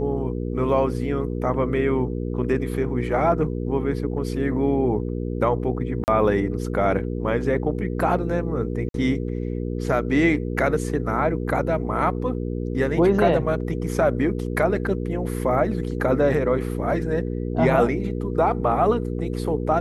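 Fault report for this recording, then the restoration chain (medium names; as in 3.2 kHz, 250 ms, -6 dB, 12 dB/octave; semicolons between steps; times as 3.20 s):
hum 60 Hz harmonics 8 -27 dBFS
6.04–6.08 s: dropout 39 ms
8.89–8.94 s: dropout 52 ms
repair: de-hum 60 Hz, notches 8; interpolate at 6.04 s, 39 ms; interpolate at 8.89 s, 52 ms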